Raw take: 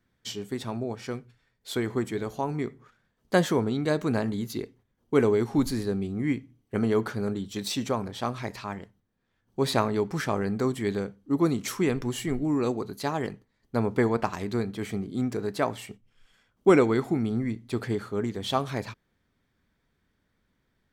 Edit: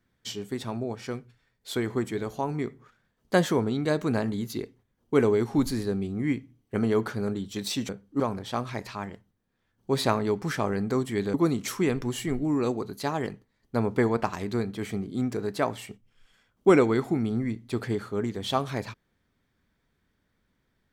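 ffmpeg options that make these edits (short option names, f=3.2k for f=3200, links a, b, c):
-filter_complex "[0:a]asplit=4[a][b][c][d];[a]atrim=end=7.892[e];[b]atrim=start=11.028:end=11.342[f];[c]atrim=start=7.888:end=11.032[g];[d]atrim=start=11.338[h];[e][f]acrossfade=d=0.004:c1=hsin:c2=hsin[i];[i][g]acrossfade=d=0.004:c1=hsin:c2=hsin[j];[j][h]acrossfade=d=0.004:c1=hsin:c2=hsin"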